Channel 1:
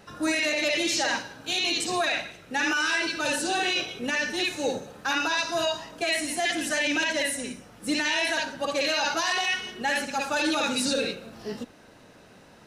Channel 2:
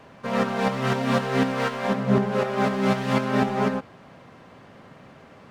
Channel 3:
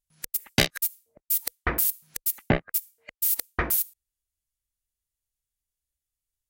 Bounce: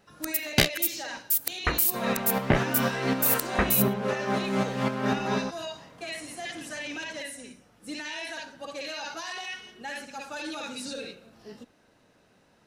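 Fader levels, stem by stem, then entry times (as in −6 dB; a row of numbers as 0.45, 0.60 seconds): −10.5, −5.0, 0.0 decibels; 0.00, 1.70, 0.00 seconds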